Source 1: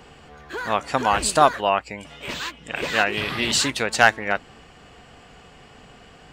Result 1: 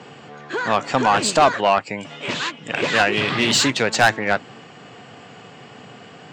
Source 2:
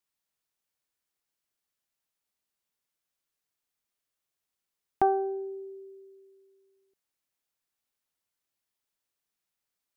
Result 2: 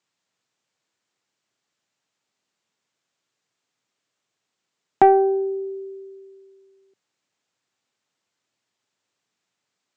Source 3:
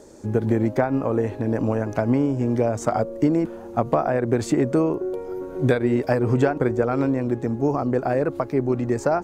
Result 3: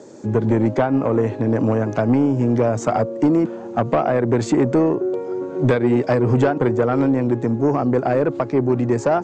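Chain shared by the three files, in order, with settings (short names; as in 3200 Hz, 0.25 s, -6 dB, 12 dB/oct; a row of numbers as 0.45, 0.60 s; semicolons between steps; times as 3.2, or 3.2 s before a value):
Chebyshev band-pass 110–7500 Hz, order 4; high shelf 2300 Hz -3.5 dB; soft clip -15 dBFS; match loudness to -19 LUFS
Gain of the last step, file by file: +7.5, +12.5, +6.0 dB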